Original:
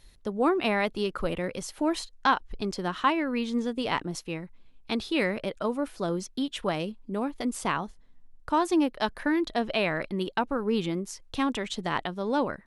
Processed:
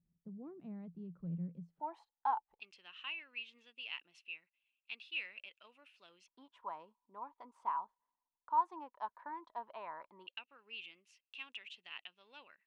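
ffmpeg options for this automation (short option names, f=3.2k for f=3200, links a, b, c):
-af "asetnsamples=n=441:p=0,asendcmd='1.8 bandpass f 860;2.6 bandpass f 2700;6.28 bandpass f 970;10.27 bandpass f 2700',bandpass=f=170:t=q:w=13:csg=0"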